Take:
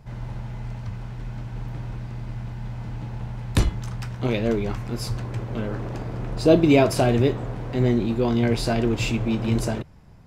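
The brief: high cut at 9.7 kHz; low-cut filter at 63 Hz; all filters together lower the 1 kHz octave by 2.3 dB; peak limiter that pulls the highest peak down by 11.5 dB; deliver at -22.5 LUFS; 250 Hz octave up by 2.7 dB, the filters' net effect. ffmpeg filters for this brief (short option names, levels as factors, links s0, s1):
-af "highpass=63,lowpass=9700,equalizer=f=250:t=o:g=3.5,equalizer=f=1000:t=o:g=-4,volume=1.78,alimiter=limit=0.316:level=0:latency=1"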